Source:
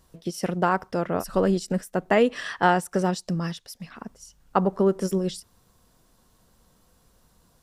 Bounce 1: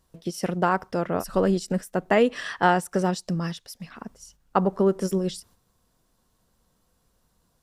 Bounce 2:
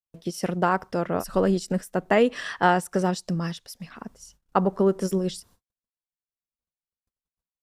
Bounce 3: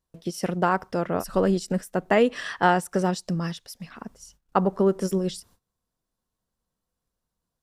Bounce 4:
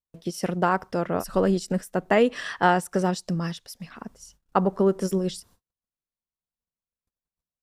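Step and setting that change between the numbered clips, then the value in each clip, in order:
gate, range: -7, -56, -22, -40 dB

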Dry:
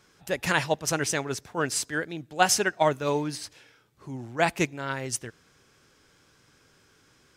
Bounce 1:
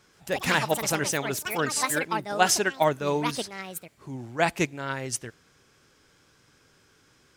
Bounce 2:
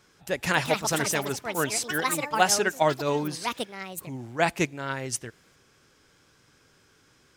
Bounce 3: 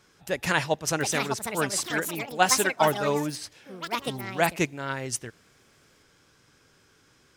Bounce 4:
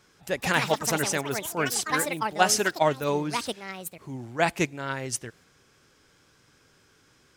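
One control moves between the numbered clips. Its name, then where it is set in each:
echoes that change speed, time: 0.13, 0.346, 0.814, 0.23 s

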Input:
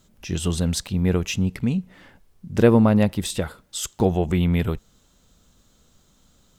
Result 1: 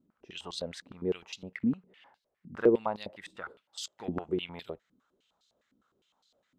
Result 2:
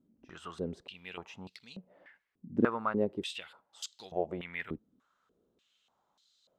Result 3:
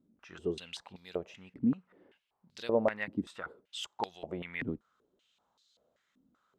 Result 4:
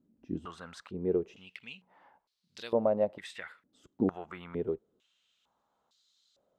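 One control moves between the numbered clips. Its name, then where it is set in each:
stepped band-pass, rate: 9.8, 3.4, 5.2, 2.2 Hz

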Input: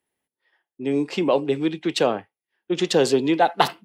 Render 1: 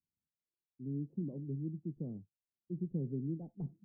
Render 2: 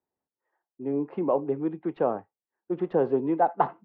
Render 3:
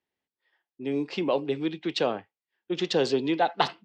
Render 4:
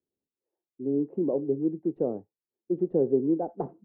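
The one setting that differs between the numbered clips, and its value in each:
ladder low-pass, frequency: 210, 1400, 6200, 550 Hz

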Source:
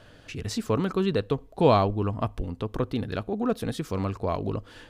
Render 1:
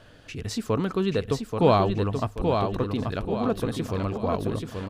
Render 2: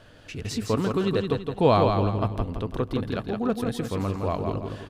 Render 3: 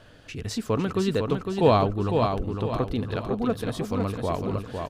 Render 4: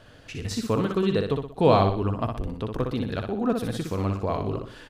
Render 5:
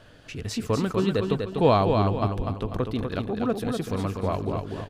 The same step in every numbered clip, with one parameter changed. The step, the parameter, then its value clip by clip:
feedback echo, time: 832, 166, 505, 61, 246 ms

